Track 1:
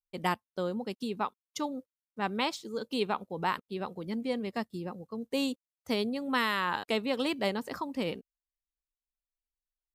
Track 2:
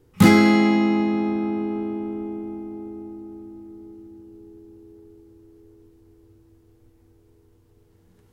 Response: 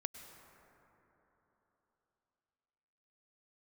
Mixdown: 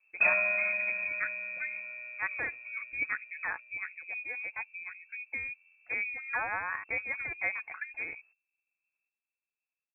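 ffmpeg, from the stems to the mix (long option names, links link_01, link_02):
-filter_complex "[0:a]highpass=240,aecho=1:1:5:0.46,volume=-4dB[link_01];[1:a]equalizer=frequency=550:width_type=o:width=2.3:gain=-12,volume=-8dB,asplit=2[link_02][link_03];[link_03]volume=-20dB,aecho=0:1:760|1520|2280|3040|3800:1|0.36|0.13|0.0467|0.0168[link_04];[link_01][link_02][link_04]amix=inputs=3:normalize=0,lowpass=frequency=2300:width_type=q:width=0.5098,lowpass=frequency=2300:width_type=q:width=0.6013,lowpass=frequency=2300:width_type=q:width=0.9,lowpass=frequency=2300:width_type=q:width=2.563,afreqshift=-2700"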